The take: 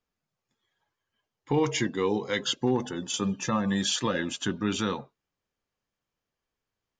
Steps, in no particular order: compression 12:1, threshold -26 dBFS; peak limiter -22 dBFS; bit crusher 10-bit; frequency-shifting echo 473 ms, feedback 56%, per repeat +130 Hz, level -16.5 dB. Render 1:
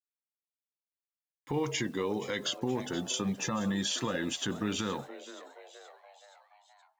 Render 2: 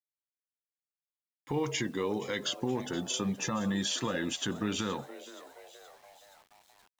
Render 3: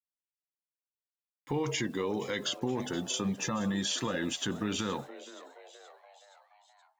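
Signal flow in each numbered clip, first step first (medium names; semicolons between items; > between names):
compression > bit crusher > frequency-shifting echo > peak limiter; compression > peak limiter > frequency-shifting echo > bit crusher; bit crusher > peak limiter > compression > frequency-shifting echo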